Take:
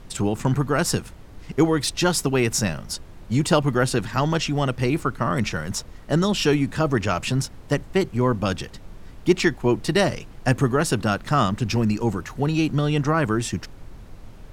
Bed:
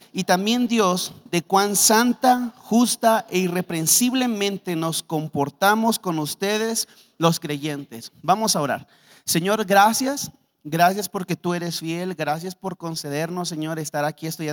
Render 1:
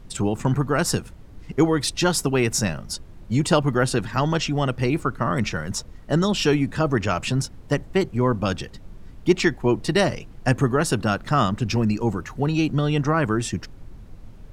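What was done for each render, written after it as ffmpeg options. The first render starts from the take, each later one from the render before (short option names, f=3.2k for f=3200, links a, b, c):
-af "afftdn=nr=6:nf=-43"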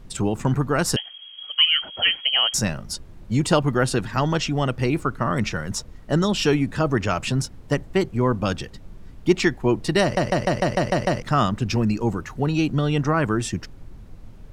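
-filter_complex "[0:a]asettb=1/sr,asplit=3[a][b][c];[a]atrim=end=0.964[d];[b]atrim=start=0.96:end=2.54,asetpts=PTS-STARTPTS,afade=t=in:d=0.004:c=qsin,afade=t=out:st=1.576:d=0.004:c=qsin,lowpass=f=2.8k:t=q:w=0.5098,lowpass=f=2.8k:t=q:w=0.6013,lowpass=f=2.8k:t=q:w=0.9,lowpass=f=2.8k:t=q:w=2.563,afreqshift=-3300[e];[c]atrim=start=2.536[f];[d][e]acrossfade=d=0.004:c1=hsin:c2=qsin[g];[g][f]acrossfade=d=0.004:c1=qsin:c2=hsin,asplit=9[h][i][j][k][l][m][n][o][p];[h]atrim=end=10.172[q];[i]atrim=start=10.018:end=10.172[r];[j]atrim=start=10.018:end=10.172[s];[k]atrim=start=10.018:end=10.172[t];[l]atrim=start=10.018:end=10.172[u];[m]atrim=start=10.018:end=10.172[v];[n]atrim=start=10.018:end=10.172[w];[o]atrim=start=10.018:end=10.172[x];[p]atrim=start=11.218[y];[q][r]acrossfade=d=0.004:c1=hsin:c2=hsin[z];[z][s]acrossfade=d=0.004:c1=hsin:c2=hsin[aa];[aa][t]acrossfade=d=0.004:c1=hsin:c2=hsin[ab];[ab][u]acrossfade=d=0.004:c1=hsin:c2=hsin[ac];[ac][v]acrossfade=d=0.004:c1=hsin:c2=hsin[ad];[ad][w]acrossfade=d=0.004:c1=hsin:c2=hsin[ae];[ae][x]acrossfade=d=0.004:c1=hsin:c2=hsin[af];[af][y]acrossfade=d=0.004:c1=hsin:c2=hsin"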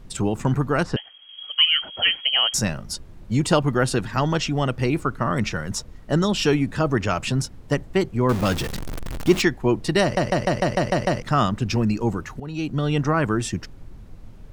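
-filter_complex "[0:a]asettb=1/sr,asplit=3[a][b][c];[a]atrim=end=0.834[d];[b]atrim=start=0.83:end=1.29,asetpts=PTS-STARTPTS,afade=t=in:d=0.004:c=qsin,afade=t=out:st=0.456:d=0.004:c=qsin,lowpass=2.3k[e];[c]atrim=start=1.286[f];[d][e]acrossfade=d=0.004:c1=hsin:c2=qsin[g];[g][f]acrossfade=d=0.004:c1=qsin:c2=hsin,asettb=1/sr,asplit=3[h][i][j];[h]atrim=end=8.294[k];[i]atrim=start=8.29:end=9.42,asetpts=PTS-STARTPTS,afade=t=in:d=0.004:c=qsin,afade=t=out:st=1.126:d=0.004:c=qsin,aeval=exprs='val(0)+0.5*0.0596*sgn(val(0))':c=same[l];[j]atrim=start=9.416[m];[k][l]acrossfade=d=0.004:c1=hsin:c2=qsin[n];[n][m]acrossfade=d=0.004:c1=qsin:c2=hsin,asplit=2[o][p];[o]atrim=end=12.4,asetpts=PTS-STARTPTS,afade=t=out:st=12.396:d=0.004:c=hsin:silence=0.16788[q];[p]atrim=start=12.4,asetpts=PTS-STARTPTS,afade=t=in:d=0.52:silence=0.16788[r];[q][r]concat=n=2:v=0:a=1"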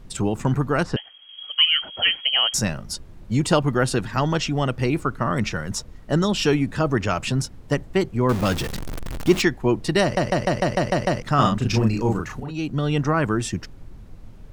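-filter_complex "[0:a]asettb=1/sr,asplit=3[a][b][c];[a]atrim=end=11.354[d];[b]atrim=start=11.35:end=12.51,asetpts=PTS-STARTPTS,afade=t=in:d=0.004:c=qsin,afade=t=out:st=1.156:d=0.004:c=qsin,asplit=2[e][f];[f]adelay=36,volume=-2dB[g];[e][g]amix=inputs=2:normalize=0,atrim=end_sample=51156[h];[c]atrim=start=12.506[i];[d][h]acrossfade=d=0.004:c1=hsin:c2=qsin[j];[j][i]acrossfade=d=0.004:c1=qsin:c2=hsin"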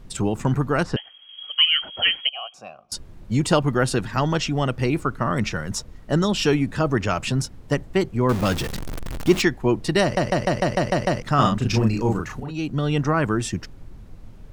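-filter_complex "[0:a]asettb=1/sr,asplit=3[a][b][c];[a]atrim=end=2.294[d];[b]atrim=start=2.29:end=2.92,asetpts=PTS-STARTPTS,afade=t=in:d=0.004:c=qsin,afade=t=out:st=0.626:d=0.004:c=qsin,asplit=3[e][f][g];[e]bandpass=f=730:t=q:w=8,volume=0dB[h];[f]bandpass=f=1.09k:t=q:w=8,volume=-6dB[i];[g]bandpass=f=2.44k:t=q:w=8,volume=-9dB[j];[h][i][j]amix=inputs=3:normalize=0[k];[c]atrim=start=2.916[l];[d][k]acrossfade=d=0.004:c1=hsin:c2=qsin[m];[m][l]acrossfade=d=0.004:c1=qsin:c2=hsin"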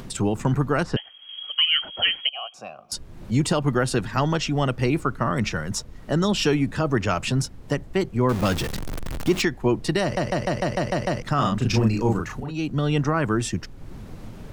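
-filter_complex "[0:a]acrossover=split=110[a][b];[b]acompressor=mode=upward:threshold=-31dB:ratio=2.5[c];[a][c]amix=inputs=2:normalize=0,alimiter=limit=-10dB:level=0:latency=1:release=148"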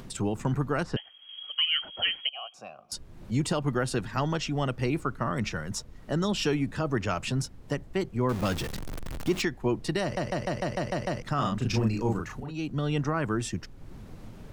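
-af "volume=-6dB"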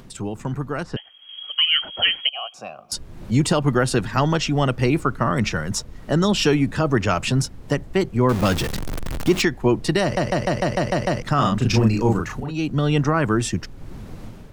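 -af "dynaudnorm=f=890:g=3:m=9dB"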